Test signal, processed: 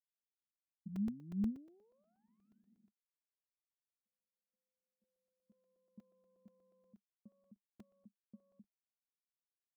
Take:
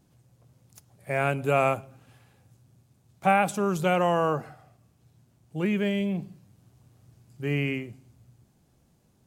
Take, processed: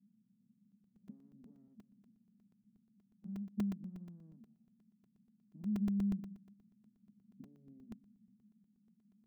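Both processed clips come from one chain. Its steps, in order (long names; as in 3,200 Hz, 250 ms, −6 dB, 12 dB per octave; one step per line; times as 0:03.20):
gap after every zero crossing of 0.18 ms
downward compressor 10 to 1, threshold −36 dBFS
harmonic generator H 6 −8 dB, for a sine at −23.5 dBFS
flat-topped band-pass 210 Hz, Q 5.6
regular buffer underruns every 0.12 s, samples 128, zero, from 0:00.72
level +4.5 dB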